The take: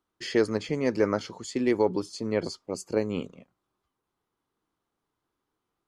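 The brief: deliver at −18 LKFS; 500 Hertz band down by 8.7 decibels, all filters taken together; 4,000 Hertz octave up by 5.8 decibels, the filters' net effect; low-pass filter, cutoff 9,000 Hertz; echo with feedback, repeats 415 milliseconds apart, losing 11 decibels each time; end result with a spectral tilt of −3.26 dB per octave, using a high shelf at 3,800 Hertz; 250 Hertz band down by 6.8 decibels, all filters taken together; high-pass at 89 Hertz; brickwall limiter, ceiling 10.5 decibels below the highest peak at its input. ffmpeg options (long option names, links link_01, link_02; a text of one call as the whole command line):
ffmpeg -i in.wav -af "highpass=89,lowpass=9000,equalizer=frequency=250:width_type=o:gain=-5.5,equalizer=frequency=500:width_type=o:gain=-9,highshelf=frequency=3800:gain=6,equalizer=frequency=4000:width_type=o:gain=3.5,alimiter=level_in=0.5dB:limit=-24dB:level=0:latency=1,volume=-0.5dB,aecho=1:1:415|830|1245:0.282|0.0789|0.0221,volume=18dB" out.wav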